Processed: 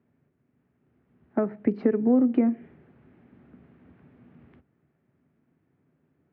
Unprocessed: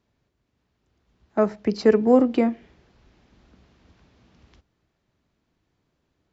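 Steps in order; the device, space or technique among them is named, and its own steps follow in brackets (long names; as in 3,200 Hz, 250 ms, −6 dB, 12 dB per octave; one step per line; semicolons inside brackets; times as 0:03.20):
bass amplifier (downward compressor 4 to 1, threshold −25 dBFS, peak gain reduction 12.5 dB; loudspeaker in its box 82–2,200 Hz, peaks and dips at 150 Hz +9 dB, 250 Hz +9 dB, 390 Hz +4 dB, 1,000 Hz −4 dB)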